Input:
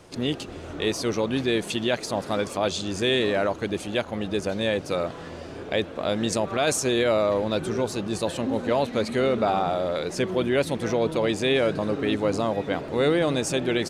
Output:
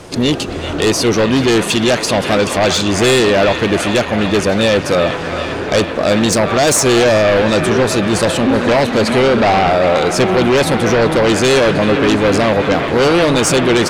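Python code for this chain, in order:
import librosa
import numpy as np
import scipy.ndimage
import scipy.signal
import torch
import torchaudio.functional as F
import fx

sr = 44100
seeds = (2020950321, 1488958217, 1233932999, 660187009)

y = fx.fold_sine(x, sr, drive_db=7, ceiling_db=-12.5)
y = fx.echo_wet_bandpass(y, sr, ms=386, feedback_pct=74, hz=1600.0, wet_db=-5.0)
y = y * librosa.db_to_amplitude(4.5)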